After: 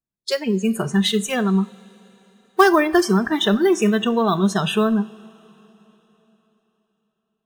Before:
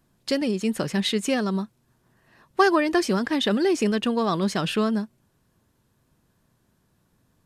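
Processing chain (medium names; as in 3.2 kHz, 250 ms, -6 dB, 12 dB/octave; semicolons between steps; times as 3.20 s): in parallel at -5 dB: companded quantiser 4-bit; on the sum: spectral noise reduction 29 dB; two-slope reverb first 0.43 s, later 3.9 s, from -18 dB, DRR 13.5 dB; trim +1 dB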